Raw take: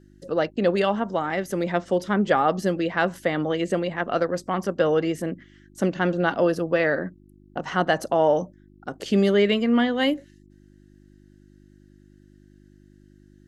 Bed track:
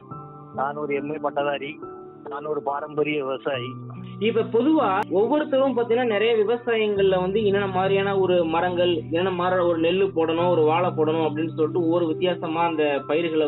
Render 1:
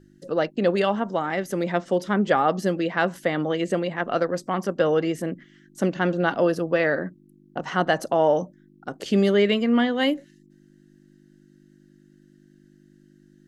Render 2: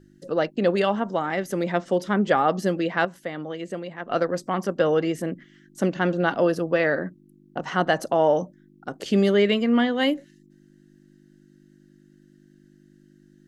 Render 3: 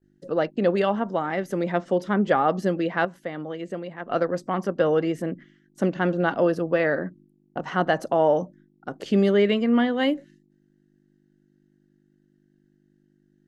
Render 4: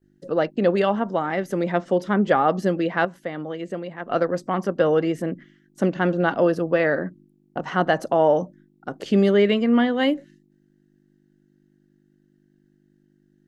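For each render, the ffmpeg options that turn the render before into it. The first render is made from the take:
-af "bandreject=f=50:t=h:w=4,bandreject=f=100:t=h:w=4"
-filter_complex "[0:a]asplit=3[s0][s1][s2];[s0]atrim=end=3.052[s3];[s1]atrim=start=3.048:end=4.102,asetpts=PTS-STARTPTS,volume=0.398[s4];[s2]atrim=start=4.098[s5];[s3][s4]acrossfade=d=0.004:c1=hsin:c2=hsin[s6];[s6][s5]acrossfade=d=0.004:c1=hsin:c2=hsin"
-af "agate=range=0.0224:threshold=0.00501:ratio=3:detection=peak,highshelf=f=3400:g=-8.5"
-af "volume=1.26"

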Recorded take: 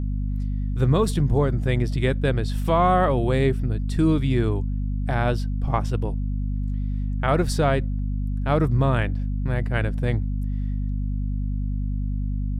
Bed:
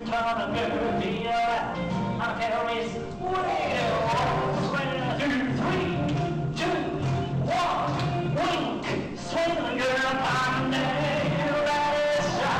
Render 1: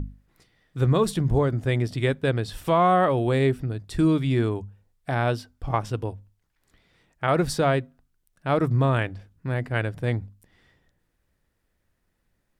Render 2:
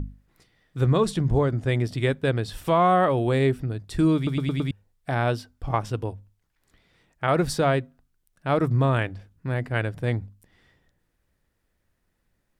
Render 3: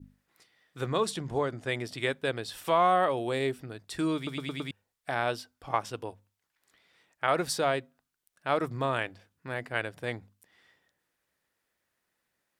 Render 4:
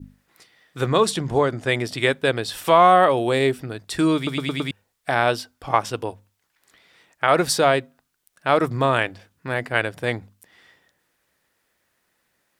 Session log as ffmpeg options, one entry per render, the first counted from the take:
-af "bandreject=f=50:t=h:w=6,bandreject=f=100:t=h:w=6,bandreject=f=150:t=h:w=6,bandreject=f=200:t=h:w=6,bandreject=f=250:t=h:w=6"
-filter_complex "[0:a]asettb=1/sr,asplit=3[s0][s1][s2];[s0]atrim=end=0.884[s3];[s1]atrim=start=0.88:end=1.68,asetpts=PTS-STARTPTS,afade=t=in:d=0.004:c=qsin,afade=t=out:st=0.796:d=0.004:c=qsin,lowpass=9400[s4];[s2]atrim=start=1.676[s5];[s3][s4]acrossfade=d=0.004:c1=hsin:c2=qsin[s6];[s6][s5]acrossfade=d=0.004:c1=qsin:c2=hsin,asplit=6[s7][s8][s9][s10][s11][s12];[s7]atrim=end=4.272[s13];[s8]atrim=start=4.158:end=4.272[s14];[s9]atrim=start=4.158:end=4.272[s15];[s10]atrim=start=4.158:end=4.272[s16];[s11]atrim=start=4.158:end=4.272[s17];[s12]atrim=start=4.708[s18];[s13][s14]acrossfade=d=0.004:c1=hsin:c2=hsin[s19];[s19][s15]acrossfade=d=0.004:c1=hsin:c2=hsin[s20];[s20][s16]acrossfade=d=0.004:c1=hsin:c2=hsin[s21];[s21][s17]acrossfade=d=0.004:c1=hsin:c2=hsin[s22];[s22][s18]acrossfade=d=0.004:c1=hsin:c2=hsin"
-af "highpass=f=770:p=1,adynamicequalizer=threshold=0.00891:dfrequency=1500:dqfactor=0.91:tfrequency=1500:tqfactor=0.91:attack=5:release=100:ratio=0.375:range=3:mode=cutabove:tftype=bell"
-af "volume=3.16,alimiter=limit=0.708:level=0:latency=1"

